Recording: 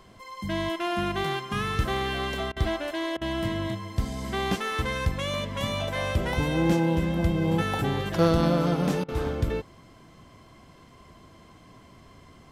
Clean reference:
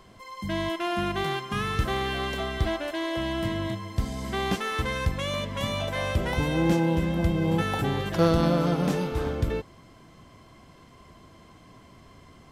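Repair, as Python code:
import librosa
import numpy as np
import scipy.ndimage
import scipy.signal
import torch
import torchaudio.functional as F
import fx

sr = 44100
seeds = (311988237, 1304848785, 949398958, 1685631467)

y = fx.fix_interpolate(x, sr, at_s=(2.52, 3.17, 9.04), length_ms=43.0)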